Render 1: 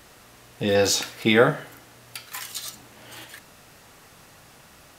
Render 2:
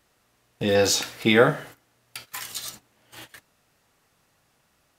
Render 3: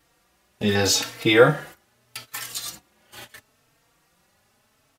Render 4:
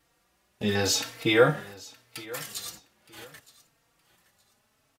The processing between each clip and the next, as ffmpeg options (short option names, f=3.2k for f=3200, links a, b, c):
-af "agate=range=-16dB:threshold=-41dB:ratio=16:detection=peak"
-filter_complex "[0:a]asplit=2[a][b];[b]adelay=3.9,afreqshift=0.78[c];[a][c]amix=inputs=2:normalize=1,volume=5dB"
-af "aecho=1:1:918|1836:0.1|0.027,volume=-5dB"